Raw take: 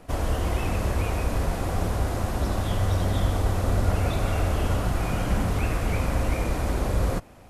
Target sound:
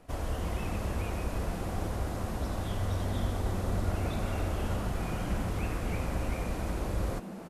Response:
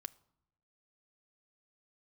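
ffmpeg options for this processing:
-filter_complex "[0:a]asplit=6[s0][s1][s2][s3][s4][s5];[s1]adelay=289,afreqshift=140,volume=0.237[s6];[s2]adelay=578,afreqshift=280,volume=0.122[s7];[s3]adelay=867,afreqshift=420,volume=0.0617[s8];[s4]adelay=1156,afreqshift=560,volume=0.0316[s9];[s5]adelay=1445,afreqshift=700,volume=0.016[s10];[s0][s6][s7][s8][s9][s10]amix=inputs=6:normalize=0,volume=0.398"

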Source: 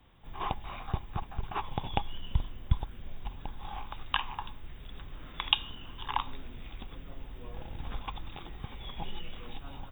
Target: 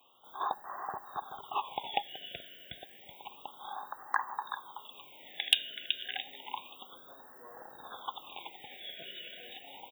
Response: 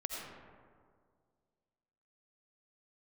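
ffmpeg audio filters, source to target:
-filter_complex "[0:a]highpass=610,asplit=2[s0][s1];[s1]aecho=0:1:377:0.355[s2];[s0][s2]amix=inputs=2:normalize=0,asoftclip=type=hard:threshold=0.237,highshelf=f=11000:g=8,afftfilt=real='re*(1-between(b*sr/1024,990*pow(2800/990,0.5+0.5*sin(2*PI*0.3*pts/sr))/1.41,990*pow(2800/990,0.5+0.5*sin(2*PI*0.3*pts/sr))*1.41))':imag='im*(1-between(b*sr/1024,990*pow(2800/990,0.5+0.5*sin(2*PI*0.3*pts/sr))/1.41,990*pow(2800/990,0.5+0.5*sin(2*PI*0.3*pts/sr))*1.41))':win_size=1024:overlap=0.75,volume=1.33"

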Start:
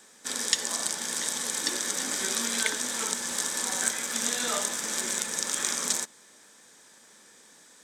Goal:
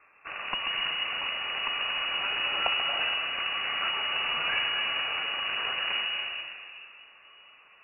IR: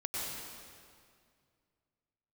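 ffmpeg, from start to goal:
-filter_complex "[0:a]aeval=exprs='0.631*(cos(1*acos(clip(val(0)/0.631,-1,1)))-cos(1*PI/2))+0.0708*(cos(8*acos(clip(val(0)/0.631,-1,1)))-cos(8*PI/2))':c=same,asplit=2[s0][s1];[1:a]atrim=start_sample=2205,lowshelf=f=410:g=10,adelay=136[s2];[s1][s2]afir=irnorm=-1:irlink=0,volume=0.422[s3];[s0][s3]amix=inputs=2:normalize=0,lowpass=f=2500:t=q:w=0.5098,lowpass=f=2500:t=q:w=0.6013,lowpass=f=2500:t=q:w=0.9,lowpass=f=2500:t=q:w=2.563,afreqshift=-2900"

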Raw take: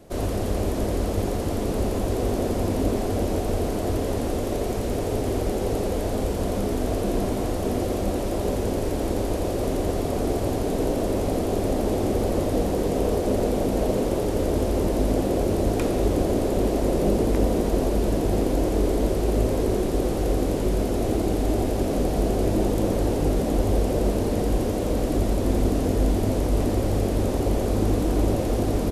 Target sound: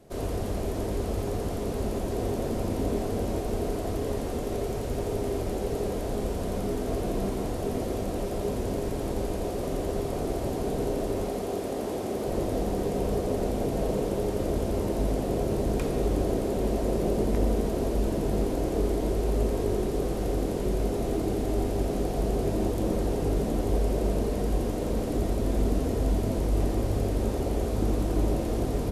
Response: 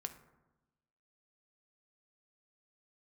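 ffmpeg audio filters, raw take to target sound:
-filter_complex "[0:a]asettb=1/sr,asplit=3[s0][s1][s2];[s0]atrim=end=11.244[s3];[s1]atrim=start=11.24:end=12.28,asetpts=PTS-STARTPTS,afade=t=in:d=0.004:c=qsin,afade=t=out:st=1.036:d=0.004:c=qsin,highpass=f=260:p=1[s4];[s2]atrim=start=12.276[s5];[s3][s4]acrossfade=d=0.004:c1=hsin:c2=qsin[s6];[s6][s5]acrossfade=d=0.004:c1=qsin:c2=hsin[s7];[1:a]atrim=start_sample=2205,asetrate=39249,aresample=44100[s8];[s7][s8]afir=irnorm=-1:irlink=0,volume=0.708"

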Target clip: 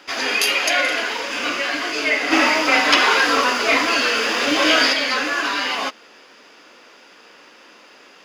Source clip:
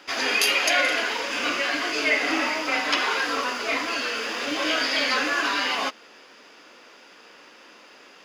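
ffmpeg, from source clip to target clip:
-filter_complex "[0:a]asplit=3[s0][s1][s2];[s0]afade=t=out:st=2.31:d=0.02[s3];[s1]acontrast=67,afade=t=in:st=2.31:d=0.02,afade=t=out:st=4.92:d=0.02[s4];[s2]afade=t=in:st=4.92:d=0.02[s5];[s3][s4][s5]amix=inputs=3:normalize=0,volume=1.33"

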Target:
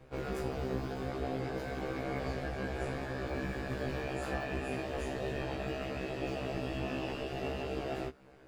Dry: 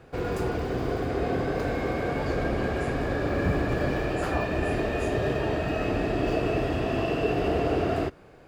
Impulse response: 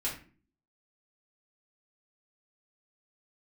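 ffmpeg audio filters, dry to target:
-filter_complex "[0:a]acrossover=split=2300[s0][s1];[s0]alimiter=limit=0.0794:level=0:latency=1:release=371[s2];[s2][s1]amix=inputs=2:normalize=0,tremolo=f=140:d=0.788,afftfilt=real='re*1.73*eq(mod(b,3),0)':imag='im*1.73*eq(mod(b,3),0)':win_size=2048:overlap=0.75"

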